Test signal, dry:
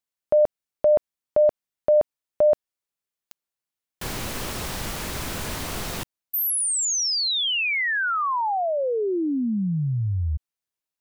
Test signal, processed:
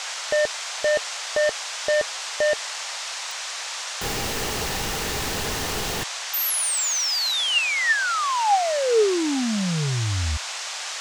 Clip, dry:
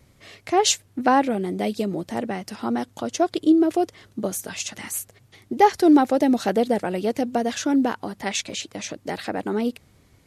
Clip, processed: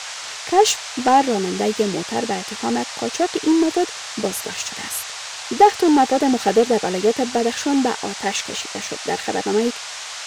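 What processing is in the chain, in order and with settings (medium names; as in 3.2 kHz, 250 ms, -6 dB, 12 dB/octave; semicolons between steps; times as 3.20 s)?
waveshaping leveller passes 2; small resonant body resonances 440/800/1800/2800 Hz, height 9 dB; band noise 620–7300 Hz -26 dBFS; trim -6 dB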